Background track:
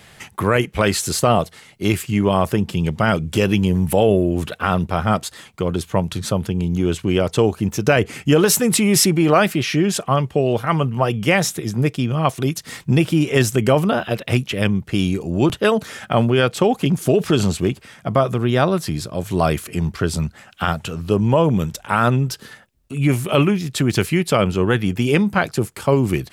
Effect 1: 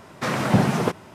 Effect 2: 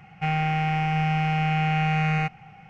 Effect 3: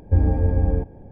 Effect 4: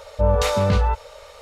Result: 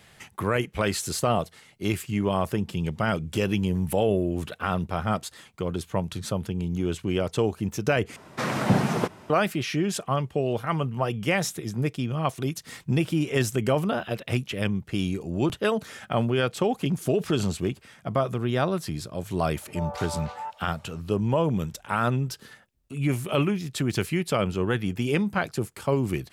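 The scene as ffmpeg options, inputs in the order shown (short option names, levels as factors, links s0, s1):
-filter_complex "[0:a]volume=0.398[s0];[4:a]highpass=f=760:t=q:w=3.9[s1];[s0]asplit=2[s2][s3];[s2]atrim=end=8.164[s4];[1:a]atrim=end=1.14,asetpts=PTS-STARTPTS,volume=0.708[s5];[s3]atrim=start=9.296[s6];[s1]atrim=end=1.41,asetpts=PTS-STARTPTS,volume=0.133,afade=t=in:d=0.004:c=hsin,afade=t=out:st=1.406:d=0.004:c=hsin,adelay=862596S[s7];[s4][s5]acrossfade=d=0.004:c1=hsin:c2=hsin[s8];[s8][s6]acrossfade=d=0.004:c1=hsin:c2=hsin[s9];[s9][s7]amix=inputs=2:normalize=0"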